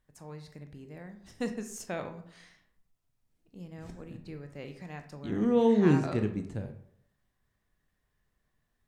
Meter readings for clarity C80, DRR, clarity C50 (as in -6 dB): 13.5 dB, 6.5 dB, 10.5 dB